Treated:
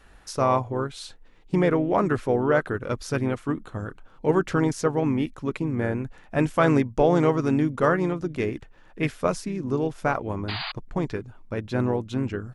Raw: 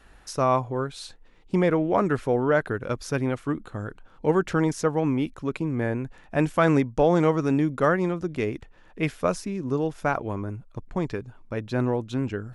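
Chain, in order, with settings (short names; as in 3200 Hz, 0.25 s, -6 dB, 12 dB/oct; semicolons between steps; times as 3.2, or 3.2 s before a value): harmoniser -3 st -10 dB; painted sound noise, 10.48–10.72, 640–4900 Hz -32 dBFS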